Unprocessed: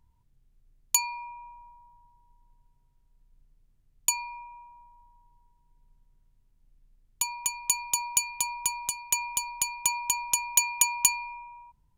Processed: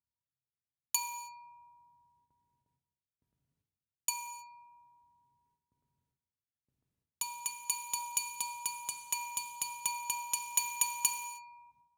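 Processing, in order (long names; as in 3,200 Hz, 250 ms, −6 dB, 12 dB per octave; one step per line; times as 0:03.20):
noise gate with hold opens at −54 dBFS
high-pass filter 81 Hz 24 dB per octave
reverb whose tail is shaped and stops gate 340 ms falling, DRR 6.5 dB
level −8 dB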